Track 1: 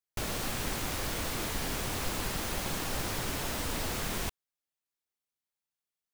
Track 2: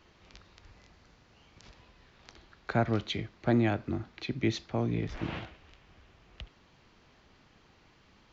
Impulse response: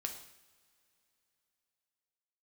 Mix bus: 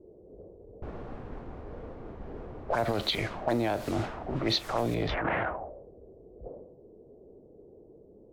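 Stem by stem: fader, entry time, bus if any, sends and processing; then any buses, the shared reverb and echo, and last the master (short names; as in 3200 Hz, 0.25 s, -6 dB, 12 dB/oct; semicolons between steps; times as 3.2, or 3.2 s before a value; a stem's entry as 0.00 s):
-1.0 dB, 0.65 s, send -9.5 dB, auto duck -12 dB, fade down 1.70 s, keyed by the second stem
+1.5 dB, 0.00 s, no send, bell 630 Hz +13.5 dB 1.4 oct; transient shaper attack -12 dB, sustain +8 dB; envelope low-pass 390–4400 Hz up, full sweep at -23.5 dBFS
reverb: on, pre-delay 3 ms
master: low-pass opened by the level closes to 450 Hz, open at -20 dBFS; compressor 12:1, threshold -24 dBFS, peak gain reduction 10.5 dB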